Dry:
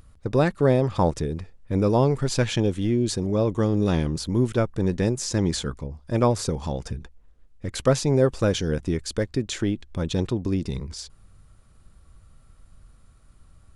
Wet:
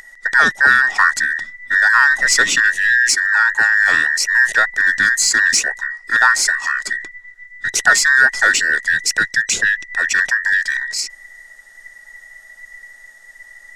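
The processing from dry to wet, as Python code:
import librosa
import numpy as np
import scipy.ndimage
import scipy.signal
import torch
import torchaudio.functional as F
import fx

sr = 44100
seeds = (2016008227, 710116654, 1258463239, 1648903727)

p1 = fx.band_invert(x, sr, width_hz=2000)
p2 = fx.peak_eq(p1, sr, hz=6600.0, db=10.5, octaves=1.3)
p3 = 10.0 ** (-16.0 / 20.0) * np.tanh(p2 / 10.0 ** (-16.0 / 20.0))
p4 = p2 + (p3 * librosa.db_to_amplitude(-4.5))
y = p4 * librosa.db_to_amplitude(3.5)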